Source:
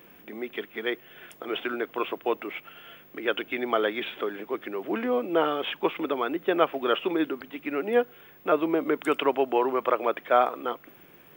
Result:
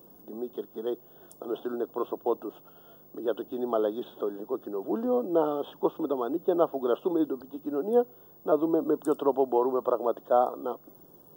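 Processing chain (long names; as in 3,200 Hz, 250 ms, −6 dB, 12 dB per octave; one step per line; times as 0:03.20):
Butterworth band-reject 2,200 Hz, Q 0.53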